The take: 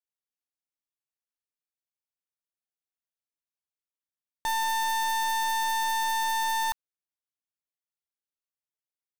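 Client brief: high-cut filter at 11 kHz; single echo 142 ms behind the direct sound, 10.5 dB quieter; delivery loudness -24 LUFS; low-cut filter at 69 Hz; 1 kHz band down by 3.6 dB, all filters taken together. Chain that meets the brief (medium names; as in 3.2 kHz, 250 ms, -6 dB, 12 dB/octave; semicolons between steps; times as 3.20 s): high-pass 69 Hz; low-pass 11 kHz; peaking EQ 1 kHz -4 dB; delay 142 ms -10.5 dB; trim +4.5 dB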